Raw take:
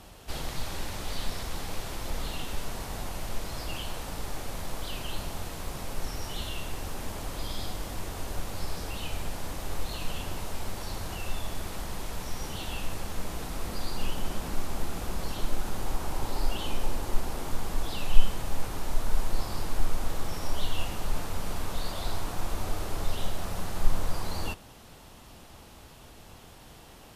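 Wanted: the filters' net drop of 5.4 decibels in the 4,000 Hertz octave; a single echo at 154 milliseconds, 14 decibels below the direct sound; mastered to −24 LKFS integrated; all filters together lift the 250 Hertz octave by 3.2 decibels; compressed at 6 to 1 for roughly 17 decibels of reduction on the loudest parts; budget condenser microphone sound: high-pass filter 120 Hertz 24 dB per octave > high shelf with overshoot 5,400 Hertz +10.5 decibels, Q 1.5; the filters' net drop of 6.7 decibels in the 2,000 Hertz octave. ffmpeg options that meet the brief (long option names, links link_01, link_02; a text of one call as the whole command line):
ffmpeg -i in.wav -af "equalizer=frequency=250:width_type=o:gain=4.5,equalizer=frequency=2000:width_type=o:gain=-6,equalizer=frequency=4000:width_type=o:gain=-5.5,acompressor=threshold=-24dB:ratio=6,highpass=frequency=120:width=0.5412,highpass=frequency=120:width=1.3066,highshelf=frequency=5400:width_type=q:width=1.5:gain=10.5,aecho=1:1:154:0.2,volume=10.5dB" out.wav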